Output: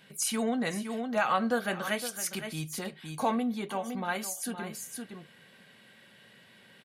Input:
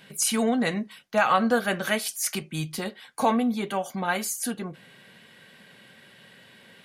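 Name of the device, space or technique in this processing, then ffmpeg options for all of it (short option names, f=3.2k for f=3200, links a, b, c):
ducked delay: -filter_complex "[0:a]asplit=3[a][b][c];[b]adelay=513,volume=-5dB[d];[c]apad=whole_len=324274[e];[d][e]sidechaincompress=threshold=-34dB:ratio=8:attack=6:release=122[f];[a][f]amix=inputs=2:normalize=0,volume=-6dB"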